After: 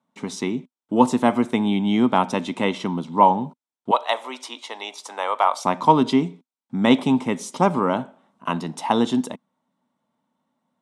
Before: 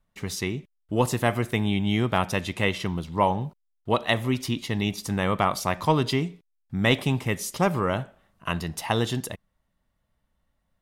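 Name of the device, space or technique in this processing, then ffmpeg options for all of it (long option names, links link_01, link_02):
television speaker: -filter_complex "[0:a]highpass=frequency=170:width=0.5412,highpass=frequency=170:width=1.3066,equalizer=frequency=250:width_type=q:width=4:gain=10,equalizer=frequency=920:width_type=q:width=4:gain=8,equalizer=frequency=1800:width_type=q:width=4:gain=-8,equalizer=frequency=2700:width_type=q:width=4:gain=-5,equalizer=frequency=4700:width_type=q:width=4:gain=-7,equalizer=frequency=6700:width_type=q:width=4:gain=-4,lowpass=frequency=8400:width=0.5412,lowpass=frequency=8400:width=1.3066,asettb=1/sr,asplit=3[link_01][link_02][link_03];[link_01]atrim=end=3.914[link_04];[link_02]atrim=start=3.91:end=5.65,asetpts=PTS-STARTPTS,afade=type=in:duration=0.004:curve=qsin,afade=type=out:start_time=1.736:duration=0.004:curve=qsin,highpass=frequency=540:width=0.5412,highpass=frequency=540:width=1.3066[link_05];[link_03]atrim=start=5.646[link_06];[link_04][link_05]acrossfade=duration=0.004:curve1=hsin:curve2=qsin[link_07];[link_07][link_06]acrossfade=duration=0.004:curve1=qsin:curve2=hsin,volume=3dB"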